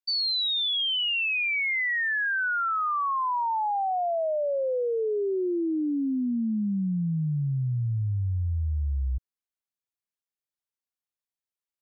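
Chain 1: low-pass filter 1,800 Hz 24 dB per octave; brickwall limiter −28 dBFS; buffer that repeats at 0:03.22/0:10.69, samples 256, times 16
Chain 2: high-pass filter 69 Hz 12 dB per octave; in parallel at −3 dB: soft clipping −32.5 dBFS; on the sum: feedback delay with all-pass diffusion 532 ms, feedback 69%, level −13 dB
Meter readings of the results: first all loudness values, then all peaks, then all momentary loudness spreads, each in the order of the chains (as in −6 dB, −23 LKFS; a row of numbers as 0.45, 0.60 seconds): −32.0, −23.5 LKFS; −28.0, −16.5 dBFS; 8, 16 LU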